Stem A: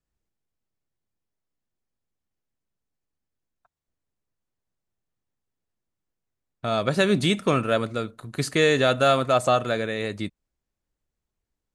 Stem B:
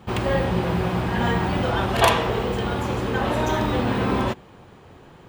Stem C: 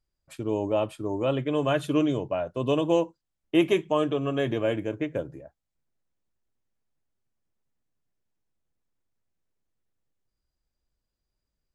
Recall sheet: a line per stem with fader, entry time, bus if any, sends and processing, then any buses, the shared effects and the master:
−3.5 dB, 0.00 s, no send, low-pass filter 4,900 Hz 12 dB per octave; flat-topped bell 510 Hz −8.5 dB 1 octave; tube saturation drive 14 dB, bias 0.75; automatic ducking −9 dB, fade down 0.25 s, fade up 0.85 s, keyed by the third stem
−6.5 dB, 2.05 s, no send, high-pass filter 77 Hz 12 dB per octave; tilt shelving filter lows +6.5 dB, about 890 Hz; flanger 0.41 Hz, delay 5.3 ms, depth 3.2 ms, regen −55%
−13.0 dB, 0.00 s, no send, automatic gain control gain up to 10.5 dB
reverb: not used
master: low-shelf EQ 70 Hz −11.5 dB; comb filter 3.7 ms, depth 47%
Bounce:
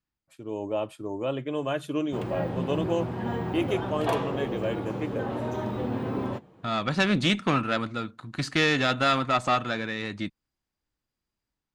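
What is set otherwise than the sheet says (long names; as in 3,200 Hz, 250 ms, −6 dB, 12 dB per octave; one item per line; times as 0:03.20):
stem A −3.5 dB → +5.0 dB
master: missing comb filter 3.7 ms, depth 47%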